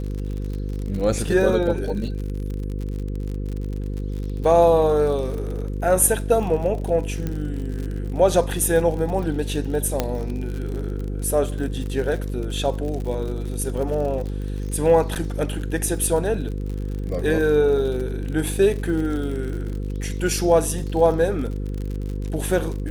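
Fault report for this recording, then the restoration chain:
mains buzz 50 Hz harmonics 10 −27 dBFS
surface crackle 53 per second −29 dBFS
0:07.27: click −14 dBFS
0:10.00: click −6 dBFS
0:15.15–0:15.16: drop-out 8.4 ms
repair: click removal
hum removal 50 Hz, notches 10
repair the gap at 0:15.15, 8.4 ms

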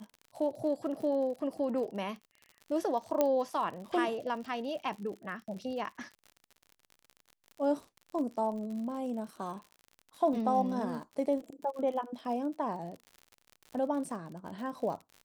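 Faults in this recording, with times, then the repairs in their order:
surface crackle 57 per second −41 dBFS
0:03.21: click −14 dBFS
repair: click removal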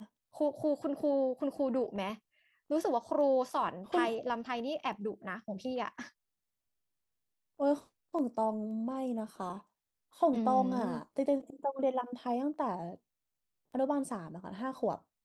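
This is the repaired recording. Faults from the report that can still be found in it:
0:03.21: click

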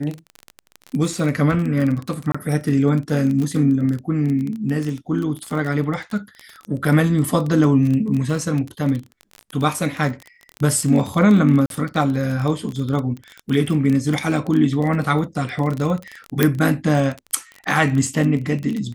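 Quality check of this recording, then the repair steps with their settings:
surface crackle 26 per second −23 dBFS
0:02.32–0:02.35: drop-out 25 ms
0:11.66–0:11.70: drop-out 42 ms
0:16.43: click −1 dBFS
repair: click removal
repair the gap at 0:02.32, 25 ms
repair the gap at 0:11.66, 42 ms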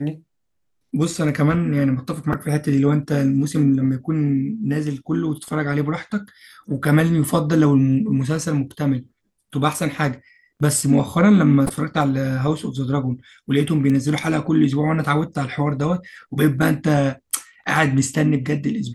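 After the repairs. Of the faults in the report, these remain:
none of them is left

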